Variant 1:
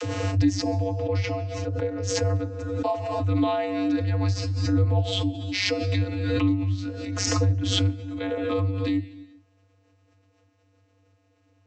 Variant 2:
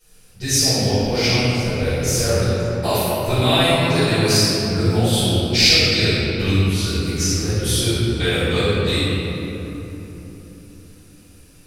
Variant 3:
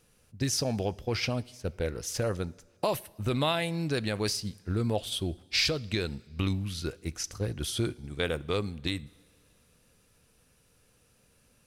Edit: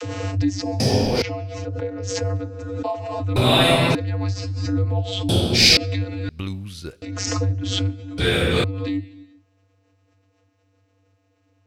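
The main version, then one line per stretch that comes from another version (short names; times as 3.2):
1
0.8–1.22 from 2
3.36–3.95 from 2
5.29–5.77 from 2
6.29–7.02 from 3
8.18–8.64 from 2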